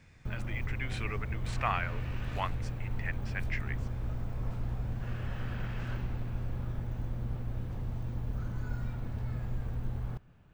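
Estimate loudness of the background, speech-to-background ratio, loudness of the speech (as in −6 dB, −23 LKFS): −38.0 LKFS, −1.0 dB, −39.0 LKFS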